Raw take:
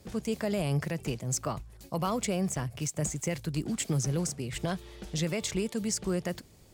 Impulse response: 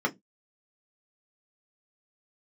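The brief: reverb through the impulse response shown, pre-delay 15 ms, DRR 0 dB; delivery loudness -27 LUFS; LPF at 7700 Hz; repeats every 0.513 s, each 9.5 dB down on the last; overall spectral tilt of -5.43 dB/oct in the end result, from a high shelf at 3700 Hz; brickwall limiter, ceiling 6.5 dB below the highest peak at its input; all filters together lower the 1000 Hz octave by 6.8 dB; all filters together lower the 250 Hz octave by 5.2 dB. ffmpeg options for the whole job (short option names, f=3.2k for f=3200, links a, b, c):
-filter_complex "[0:a]lowpass=7.7k,equalizer=f=250:t=o:g=-8,equalizer=f=1k:t=o:g=-8.5,highshelf=f=3.7k:g=-6,alimiter=level_in=4.5dB:limit=-24dB:level=0:latency=1,volume=-4.5dB,aecho=1:1:513|1026|1539|2052:0.335|0.111|0.0365|0.012,asplit=2[a][b];[1:a]atrim=start_sample=2205,adelay=15[c];[b][c]afir=irnorm=-1:irlink=0,volume=-10.5dB[d];[a][d]amix=inputs=2:normalize=0,volume=8.5dB"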